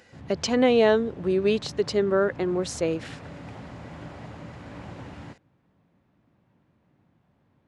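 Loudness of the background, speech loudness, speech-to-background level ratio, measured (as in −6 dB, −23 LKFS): −42.5 LKFS, −24.0 LKFS, 18.5 dB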